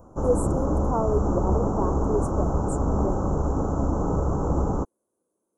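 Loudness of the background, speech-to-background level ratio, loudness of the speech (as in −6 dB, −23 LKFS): −25.5 LKFS, −5.0 dB, −30.5 LKFS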